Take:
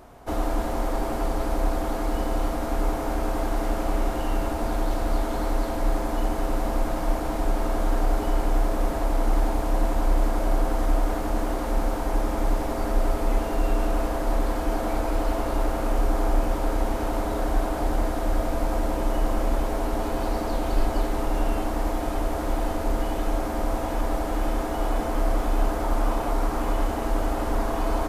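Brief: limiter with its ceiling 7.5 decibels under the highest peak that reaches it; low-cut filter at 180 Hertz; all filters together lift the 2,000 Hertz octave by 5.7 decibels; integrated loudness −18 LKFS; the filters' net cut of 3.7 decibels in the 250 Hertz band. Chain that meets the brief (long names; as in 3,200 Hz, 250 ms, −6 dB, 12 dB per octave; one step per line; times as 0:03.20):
high-pass filter 180 Hz
parametric band 250 Hz −4 dB
parametric band 2,000 Hz +7.5 dB
level +14.5 dB
brickwall limiter −9 dBFS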